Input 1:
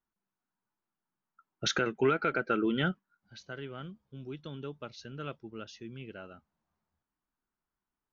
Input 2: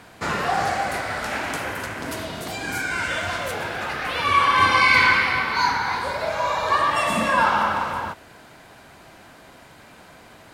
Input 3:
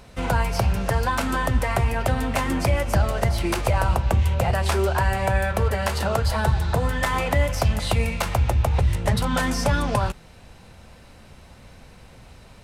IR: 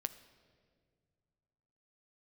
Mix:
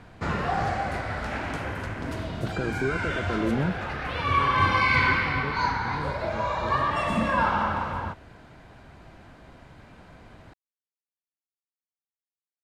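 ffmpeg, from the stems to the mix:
-filter_complex "[0:a]adelay=800,volume=1dB[a];[1:a]volume=-5dB[b];[a]lowpass=1.4k,alimiter=limit=-22.5dB:level=0:latency=1,volume=0dB[c];[b][c]amix=inputs=2:normalize=0,aemphasis=mode=reproduction:type=bsi"

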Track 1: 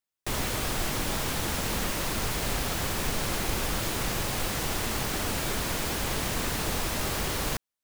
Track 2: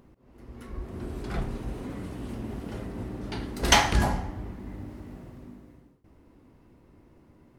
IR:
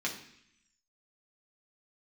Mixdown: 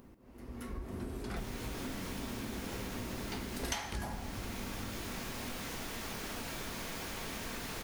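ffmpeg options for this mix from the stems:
-filter_complex "[0:a]adelay=1100,volume=-13dB,asplit=2[a][b];[b]volume=-5dB[c];[1:a]highshelf=f=7.1k:g=10,volume=-2dB,asplit=2[d][e];[e]volume=-12dB[f];[2:a]atrim=start_sample=2205[g];[c][f]amix=inputs=2:normalize=0[h];[h][g]afir=irnorm=-1:irlink=0[i];[a][d][i]amix=inputs=3:normalize=0,acompressor=threshold=-37dB:ratio=5"

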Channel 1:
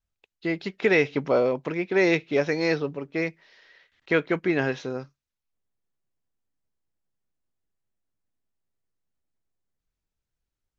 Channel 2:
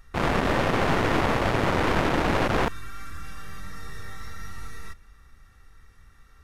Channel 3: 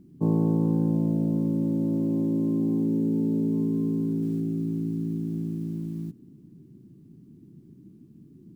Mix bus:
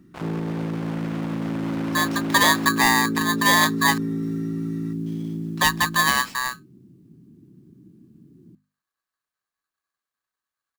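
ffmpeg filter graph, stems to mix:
-filter_complex "[0:a]highpass=72,equalizer=f=260:w=2.6:g=8.5,aeval=exprs='val(0)*sgn(sin(2*PI*1400*n/s))':c=same,adelay=1500,volume=1dB,asplit=3[a][b][c];[a]atrim=end=3.98,asetpts=PTS-STARTPTS,afade=t=out:st=3.976:d=0.004:c=hsin[d];[b]atrim=start=3.98:end=5.06,asetpts=PTS-STARTPTS,volume=0[e];[c]atrim=start=5.06,asetpts=PTS-STARTPTS,afade=t=in:d=0.004:c=hsin[f];[d][e][f]concat=n=3:v=0:a=1[g];[1:a]aeval=exprs='abs(val(0))':c=same,volume=-9dB[h];[2:a]volume=1dB[i];[h][i]amix=inputs=2:normalize=0,highpass=62,alimiter=limit=-19.5dB:level=0:latency=1:release=18,volume=0dB[j];[g][j]amix=inputs=2:normalize=0,bandreject=f=50:t=h:w=6,bandreject=f=100:t=h:w=6,bandreject=f=150:t=h:w=6,bandreject=f=200:t=h:w=6,bandreject=f=250:t=h:w=6"

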